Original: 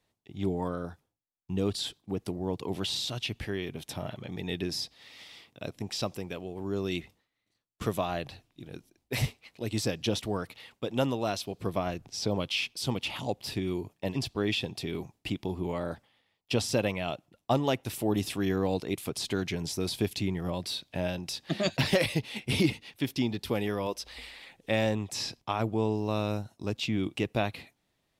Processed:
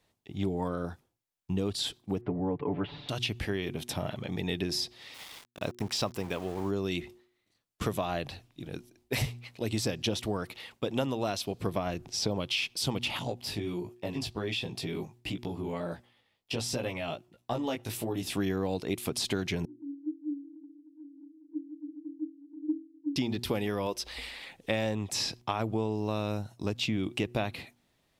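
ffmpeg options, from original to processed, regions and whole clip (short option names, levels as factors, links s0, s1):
-filter_complex "[0:a]asettb=1/sr,asplit=3[s0][s1][s2];[s0]atrim=end=2.214[s3];[s1]atrim=start=2.21:end=3.09,asetpts=PTS-STARTPTS,afade=t=in:d=0.004:c=qsin,afade=t=out:st=0.876:d=0.004:c=qsin,lowpass=f=2000:w=0.5412,lowpass=f=2000:w=1.3066,aecho=1:1:6.9:0.66,atrim=end_sample=38808[s4];[s2]atrim=start=3.086[s5];[s3][s4]acrossfade=d=0.004:c1=hsin:c2=qsin[s6];[s6][s5]acrossfade=d=0.004:c1=qsin:c2=hsin,asettb=1/sr,asplit=3[s7][s8][s9];[s7]atrim=end=5.144[s10];[s8]atrim=start=5.14:end=6.71,asetpts=PTS-STARTPTS,afade=t=in:d=0.004:c=qsin,afade=t=out:st=1.566:d=0.004:c=qsin,aeval=exprs='val(0)*gte(abs(val(0)),0.00398)':c=same,equalizer=f=1000:w=1.4:g=5[s11];[s9]atrim=start=6.706[s12];[s10][s11]acrossfade=d=0.004:c1=hsin:c2=qsin[s13];[s13][s12]acrossfade=d=0.004:c1=qsin:c2=hsin,asettb=1/sr,asplit=3[s14][s15][s16];[s14]atrim=end=13.194[s17];[s15]atrim=start=13.19:end=18.35,asetpts=PTS-STARTPTS,afade=t=in:d=0.004:c=qsin,afade=t=out:st=5.156:d=0.004:c=qsin,acompressor=threshold=0.0282:ratio=2:attack=3.2:release=140:knee=1:detection=peak,flanger=delay=16.5:depth=2.6:speed=1.4[s18];[s16]atrim=start=18.346[s19];[s17][s18]acrossfade=d=0.004:c1=hsin:c2=qsin[s20];[s20][s19]acrossfade=d=0.004:c1=qsin:c2=hsin,asettb=1/sr,asplit=3[s21][s22][s23];[s21]atrim=end=19.654[s24];[s22]atrim=start=19.65:end=23.16,asetpts=PTS-STARTPTS,afade=t=in:d=0.004:c=qsin,afade=t=out:st=3.506:d=0.004:c=qsin,asuperpass=centerf=300:order=20:qfactor=6.9,acompressor=mode=upward:threshold=0.00501:ratio=2.5:attack=3.2:release=140:knee=2.83:detection=peak[s25];[s23]atrim=start=23.156[s26];[s24][s25]acrossfade=d=0.004:c1=hsin:c2=qsin[s27];[s27][s26]acrossfade=d=0.004:c1=qsin:c2=hsin,bandreject=f=120.4:t=h:w=4,bandreject=f=240.8:t=h:w=4,bandreject=f=361.2:t=h:w=4,acompressor=threshold=0.0282:ratio=4,volume=1.58"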